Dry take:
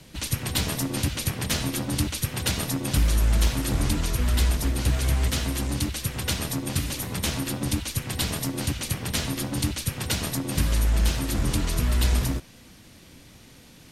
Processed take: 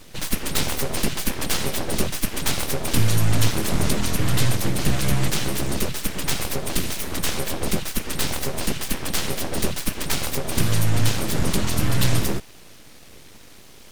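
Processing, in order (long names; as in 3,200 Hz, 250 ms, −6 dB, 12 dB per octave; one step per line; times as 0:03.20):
full-wave rectification
level +5.5 dB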